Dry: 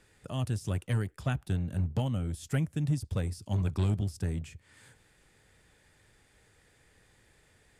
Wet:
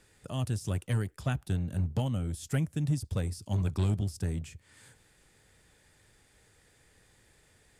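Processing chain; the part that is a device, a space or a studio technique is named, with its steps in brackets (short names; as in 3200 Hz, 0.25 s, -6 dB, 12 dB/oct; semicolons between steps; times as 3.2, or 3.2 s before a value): exciter from parts (in parallel at -6.5 dB: HPF 3200 Hz 12 dB/oct + soft clip -39.5 dBFS, distortion -18 dB)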